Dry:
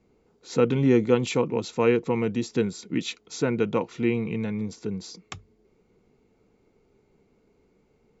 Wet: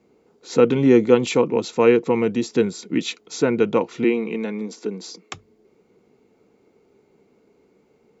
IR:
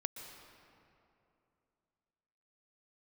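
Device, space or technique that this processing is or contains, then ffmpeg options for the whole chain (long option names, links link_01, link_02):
filter by subtraction: -filter_complex "[0:a]asplit=2[link_01][link_02];[link_02]lowpass=330,volume=-1[link_03];[link_01][link_03]amix=inputs=2:normalize=0,asettb=1/sr,asplit=3[link_04][link_05][link_06];[link_04]atrim=end=4.044[link_07];[link_05]atrim=start=4.04:end=5.34,asetpts=PTS-STARTPTS,afade=type=in:duration=0.004:curve=qsin,afade=type=out:start_time=1.296:duration=0.004:curve=qsin,highpass=frequency=210:width=0.5412,highpass=frequency=210:width=1.3066[link_08];[link_06]atrim=start=5.336[link_09];[link_07][link_08]acrossfade=duration=0.004:curve1=hsin:curve2=qsin[link_10];[link_10][link_09]acrossfade=duration=0.004:curve1=qsin:curve2=hsin,volume=4.5dB"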